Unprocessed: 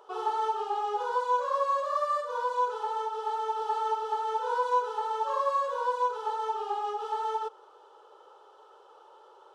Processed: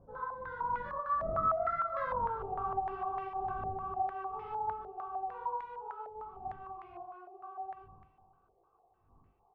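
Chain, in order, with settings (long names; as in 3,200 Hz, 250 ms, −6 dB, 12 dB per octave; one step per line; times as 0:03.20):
wind on the microphone 130 Hz −40 dBFS
source passing by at 0:02.16, 50 m/s, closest 8.8 metres
downward compressor 10 to 1, threshold −44 dBFS, peak gain reduction 20 dB
double-tracking delay 20 ms −4 dB
feedback echo with a high-pass in the loop 125 ms, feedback 72%, high-pass 460 Hz, level −14 dB
low-pass on a step sequencer 6.6 Hz 620–2,100 Hz
level +6.5 dB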